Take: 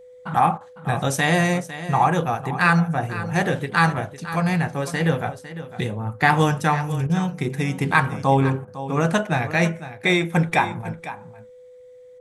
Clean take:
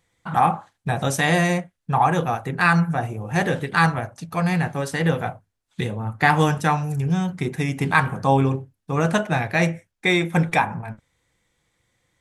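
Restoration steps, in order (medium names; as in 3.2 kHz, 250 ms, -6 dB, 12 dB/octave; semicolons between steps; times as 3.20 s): band-stop 500 Hz, Q 30; interpolate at 0.58/7.07/8.65 s, 25 ms; inverse comb 504 ms -13.5 dB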